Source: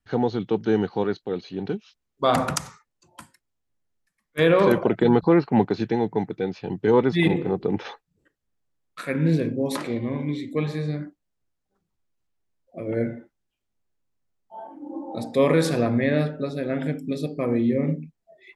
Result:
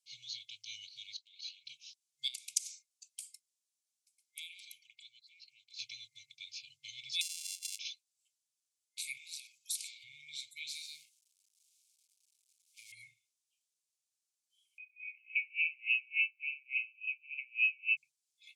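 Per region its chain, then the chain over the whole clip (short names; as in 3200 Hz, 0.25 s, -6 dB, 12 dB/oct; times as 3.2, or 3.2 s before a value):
1.16–1.66 BPF 410–6400 Hz + compressor 5:1, threshold -34 dBFS
2.28–5.79 compressor 2:1, threshold -40 dBFS + HPF 550 Hz 6 dB/oct
7.21–7.79 sample sorter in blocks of 64 samples + HPF 890 Hz 24 dB/oct + compressor, threshold -37 dBFS
9.17–10.04 HPF 390 Hz + tilt +3 dB/oct + compressor 20:1, threshold -37 dBFS
10.75–12.92 G.711 law mismatch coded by mu + low shelf 340 Hz -11 dB
14.78–17.97 overloaded stage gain 17.5 dB + inverted band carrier 2800 Hz + dB-linear tremolo 3.5 Hz, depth 34 dB
whole clip: pre-emphasis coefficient 0.9; FFT band-reject 140–2100 Hz; weighting filter ITU-R 468; gain -3 dB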